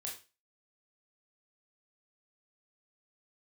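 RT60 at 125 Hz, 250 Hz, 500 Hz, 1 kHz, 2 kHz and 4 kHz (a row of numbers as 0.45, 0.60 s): 0.35, 0.30, 0.30, 0.30, 0.30, 0.30 s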